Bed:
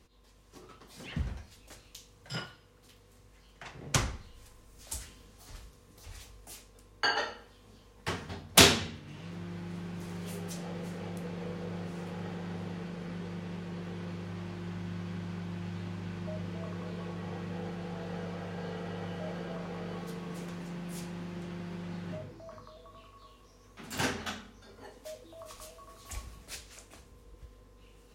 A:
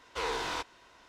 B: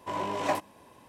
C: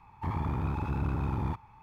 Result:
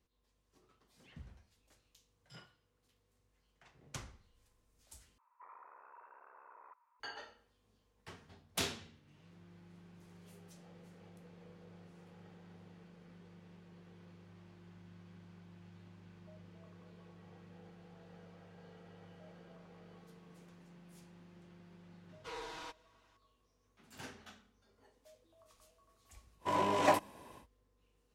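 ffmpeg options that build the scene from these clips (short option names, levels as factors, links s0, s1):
-filter_complex "[0:a]volume=0.126[s0];[3:a]highpass=f=500:t=q:w=0.5412,highpass=f=500:t=q:w=1.307,lowpass=f=2000:t=q:w=0.5176,lowpass=f=2000:t=q:w=0.7071,lowpass=f=2000:t=q:w=1.932,afreqshift=97[s1];[1:a]aecho=1:1:6.3:0.77[s2];[s0]asplit=2[s3][s4];[s3]atrim=end=5.184[s5];[s1]atrim=end=1.82,asetpts=PTS-STARTPTS,volume=0.141[s6];[s4]atrim=start=6.996[s7];[s2]atrim=end=1.08,asetpts=PTS-STARTPTS,volume=0.178,afade=t=in:d=0.004:c=hsin,afade=t=out:st=1.076:d=0.004:c=hsin,adelay=22090[s8];[2:a]atrim=end=1.08,asetpts=PTS-STARTPTS,afade=t=in:d=0.1,afade=t=out:st=0.98:d=0.1,adelay=26390[s9];[s5][s6]acrossfade=d=0.004:c1=hsin:c2=hsin[s10];[s10][s7]acrossfade=d=0.004:c1=hsin:c2=hsin[s11];[s11][s8][s9]amix=inputs=3:normalize=0"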